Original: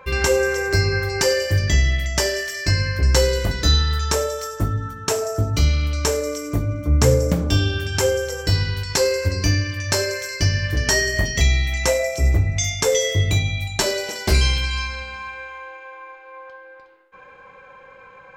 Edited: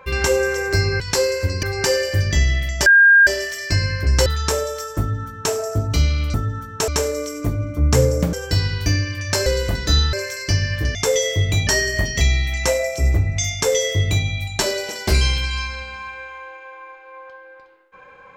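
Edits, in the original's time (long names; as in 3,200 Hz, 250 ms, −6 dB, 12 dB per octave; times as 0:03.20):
0:02.23: insert tone 1,610 Hz −7 dBFS 0.41 s
0:03.22–0:03.89: move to 0:10.05
0:04.62–0:05.16: duplicate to 0:05.97
0:07.42–0:08.29: remove
0:08.82–0:09.45: move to 0:01.00
0:12.74–0:13.46: duplicate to 0:10.87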